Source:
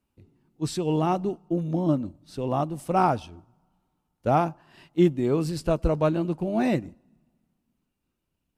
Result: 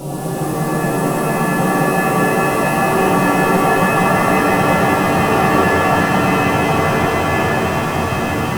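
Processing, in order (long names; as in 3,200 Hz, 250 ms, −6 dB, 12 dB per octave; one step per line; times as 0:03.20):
converter with a step at zero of −35 dBFS
source passing by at 0:03.78, 15 m/s, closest 18 metres
all-pass phaser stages 2, 0.39 Hz, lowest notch 760–1,700 Hz
extreme stretch with random phases 13×, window 1.00 s, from 0:02.58
reverb with rising layers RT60 3.4 s, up +7 semitones, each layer −2 dB, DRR −7 dB
level +4 dB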